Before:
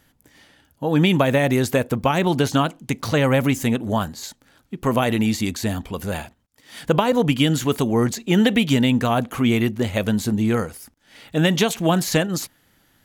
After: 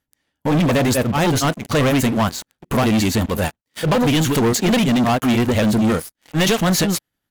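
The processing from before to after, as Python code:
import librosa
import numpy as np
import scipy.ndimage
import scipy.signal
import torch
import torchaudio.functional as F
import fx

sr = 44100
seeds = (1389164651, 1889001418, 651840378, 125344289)

y = fx.stretch_grains(x, sr, factor=0.56, grain_ms=186.0)
y = fx.leveller(y, sr, passes=5)
y = y * 10.0 ** (-8.0 / 20.0)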